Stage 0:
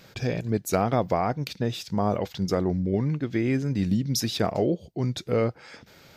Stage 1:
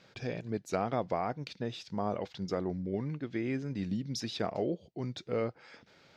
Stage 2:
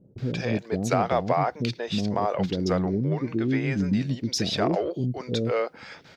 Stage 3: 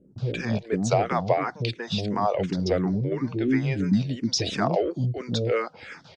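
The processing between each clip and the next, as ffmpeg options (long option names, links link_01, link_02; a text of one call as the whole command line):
ffmpeg -i in.wav -af "lowpass=5300,lowshelf=frequency=100:gain=-11,volume=-7.5dB" out.wav
ffmpeg -i in.wav -filter_complex "[0:a]asplit=2[link_01][link_02];[link_02]asoftclip=type=tanh:threshold=-30dB,volume=-8dB[link_03];[link_01][link_03]amix=inputs=2:normalize=0,acrossover=split=410[link_04][link_05];[link_05]adelay=180[link_06];[link_04][link_06]amix=inputs=2:normalize=0,volume=8.5dB" out.wav
ffmpeg -i in.wav -filter_complex "[0:a]aresample=22050,aresample=44100,asplit=2[link_01][link_02];[link_02]afreqshift=-2.9[link_03];[link_01][link_03]amix=inputs=2:normalize=1,volume=3.5dB" out.wav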